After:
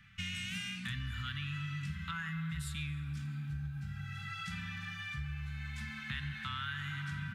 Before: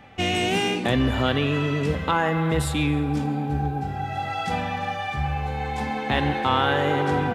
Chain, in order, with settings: elliptic band-stop 180–1400 Hz, stop band 60 dB; compression 3:1, threshold -30 dBFS, peak gain reduction 7.5 dB; trim -7.5 dB

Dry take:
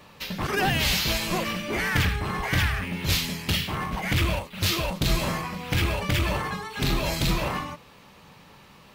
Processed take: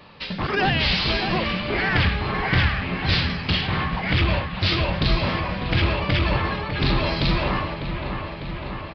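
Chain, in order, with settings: on a send: feedback echo behind a low-pass 600 ms, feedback 71%, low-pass 2.6 kHz, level -7.5 dB; on the sum: resampled via 11.025 kHz; trim +3 dB

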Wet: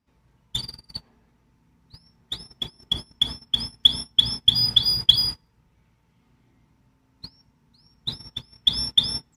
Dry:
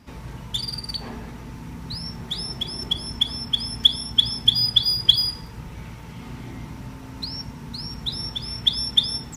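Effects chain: gate -27 dBFS, range -26 dB

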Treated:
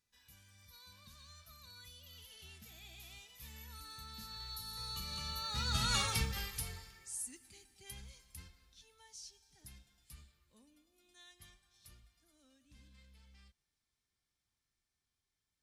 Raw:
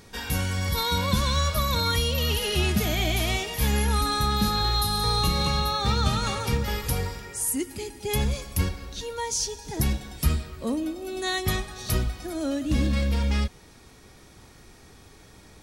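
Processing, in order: Doppler pass-by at 6.02 s, 18 m/s, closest 3.2 m; amplifier tone stack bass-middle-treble 5-5-5; trim +7 dB

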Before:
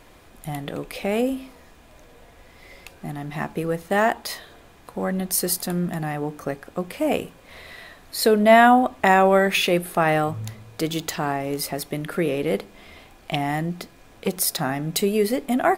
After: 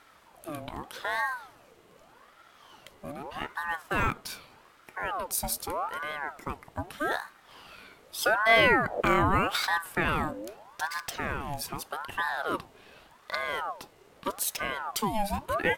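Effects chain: 8.34–9.00 s: wind noise 82 Hz -26 dBFS; ring modulator with a swept carrier 880 Hz, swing 55%, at 0.82 Hz; trim -5 dB

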